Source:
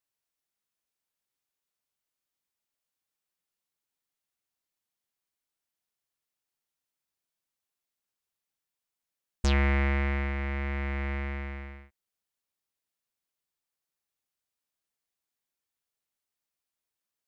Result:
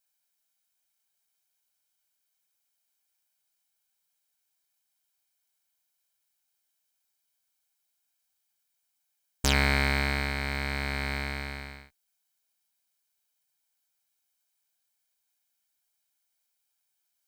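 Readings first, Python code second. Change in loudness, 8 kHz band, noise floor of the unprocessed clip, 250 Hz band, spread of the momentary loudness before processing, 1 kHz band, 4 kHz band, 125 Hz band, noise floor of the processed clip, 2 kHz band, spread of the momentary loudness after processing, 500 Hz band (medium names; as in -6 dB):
+1.5 dB, no reading, under -85 dBFS, -1.0 dB, 13 LU, +3.5 dB, +10.0 dB, -2.0 dB, -79 dBFS, +5.0 dB, 14 LU, +0.5 dB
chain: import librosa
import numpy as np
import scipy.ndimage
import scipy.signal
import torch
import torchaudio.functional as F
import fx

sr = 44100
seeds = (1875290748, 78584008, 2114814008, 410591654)

y = fx.lower_of_two(x, sr, delay_ms=1.3)
y = fx.tilt_eq(y, sr, slope=2.0)
y = F.gain(torch.from_numpy(y), 4.5).numpy()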